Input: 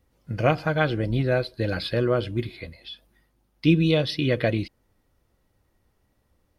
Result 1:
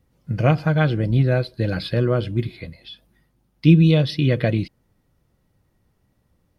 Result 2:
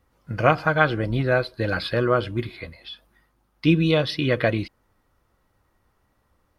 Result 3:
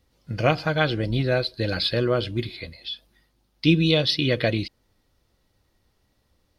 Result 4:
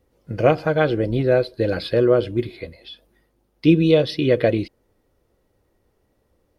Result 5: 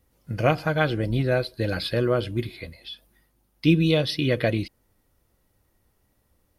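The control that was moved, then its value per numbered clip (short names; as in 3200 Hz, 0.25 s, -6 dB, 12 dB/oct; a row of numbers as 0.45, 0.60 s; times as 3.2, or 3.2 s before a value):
bell, frequency: 150, 1200, 4300, 440, 13000 Hz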